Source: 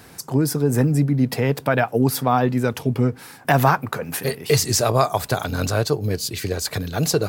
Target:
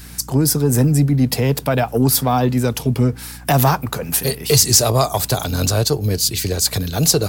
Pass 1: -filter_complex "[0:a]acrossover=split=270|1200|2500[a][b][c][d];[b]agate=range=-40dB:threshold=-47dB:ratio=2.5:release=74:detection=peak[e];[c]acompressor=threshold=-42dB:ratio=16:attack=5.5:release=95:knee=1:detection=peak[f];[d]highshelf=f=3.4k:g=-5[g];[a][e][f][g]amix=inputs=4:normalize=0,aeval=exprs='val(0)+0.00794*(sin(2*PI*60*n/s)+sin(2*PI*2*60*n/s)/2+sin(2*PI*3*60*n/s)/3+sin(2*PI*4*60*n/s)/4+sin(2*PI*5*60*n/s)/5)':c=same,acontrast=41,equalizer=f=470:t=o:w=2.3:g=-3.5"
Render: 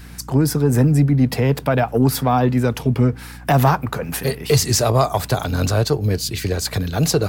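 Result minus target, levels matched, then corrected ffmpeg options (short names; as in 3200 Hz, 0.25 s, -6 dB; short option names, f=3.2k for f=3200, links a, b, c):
8000 Hz band -6.5 dB; compressor: peak gain reduction -6 dB
-filter_complex "[0:a]acrossover=split=270|1200|2500[a][b][c][d];[b]agate=range=-40dB:threshold=-47dB:ratio=2.5:release=74:detection=peak[e];[c]acompressor=threshold=-48.5dB:ratio=16:attack=5.5:release=95:knee=1:detection=peak[f];[d]highshelf=f=3.4k:g=5.5[g];[a][e][f][g]amix=inputs=4:normalize=0,aeval=exprs='val(0)+0.00794*(sin(2*PI*60*n/s)+sin(2*PI*2*60*n/s)/2+sin(2*PI*3*60*n/s)/3+sin(2*PI*4*60*n/s)/4+sin(2*PI*5*60*n/s)/5)':c=same,acontrast=41,equalizer=f=470:t=o:w=2.3:g=-3.5"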